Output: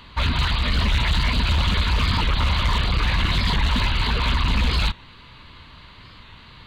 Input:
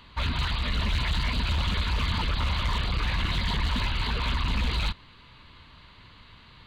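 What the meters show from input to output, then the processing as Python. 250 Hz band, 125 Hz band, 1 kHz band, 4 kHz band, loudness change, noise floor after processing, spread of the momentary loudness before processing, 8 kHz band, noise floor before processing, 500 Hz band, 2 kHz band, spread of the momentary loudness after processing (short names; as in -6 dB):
+6.5 dB, +6.5 dB, +6.5 dB, +6.5 dB, +6.5 dB, -46 dBFS, 1 LU, +6.5 dB, -52 dBFS, +6.5 dB, +6.5 dB, 1 LU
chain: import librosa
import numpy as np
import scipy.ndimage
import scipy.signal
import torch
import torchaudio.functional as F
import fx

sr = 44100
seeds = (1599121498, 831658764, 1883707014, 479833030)

y = fx.record_warp(x, sr, rpm=45.0, depth_cents=100.0)
y = y * librosa.db_to_amplitude(6.5)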